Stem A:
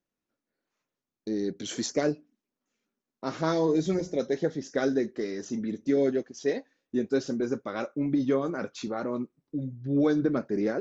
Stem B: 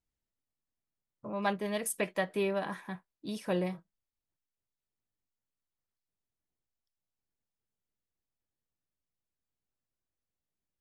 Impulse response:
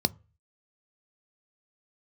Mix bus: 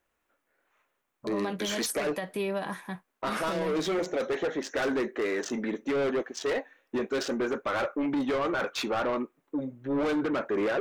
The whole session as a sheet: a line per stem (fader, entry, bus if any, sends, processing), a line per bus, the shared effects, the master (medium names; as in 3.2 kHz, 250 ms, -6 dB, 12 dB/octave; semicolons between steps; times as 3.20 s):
-3.0 dB, 0.00 s, no send, local Wiener filter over 9 samples; high-pass 550 Hz 6 dB/octave; overdrive pedal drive 27 dB, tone 4.7 kHz, clips at -15 dBFS
+3.0 dB, 0.00 s, no send, treble shelf 6.8 kHz +8 dB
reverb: none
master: peak limiter -23 dBFS, peak gain reduction 11 dB